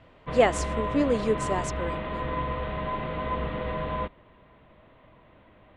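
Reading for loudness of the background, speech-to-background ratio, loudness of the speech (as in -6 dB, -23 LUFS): -31.5 LUFS, 4.5 dB, -27.0 LUFS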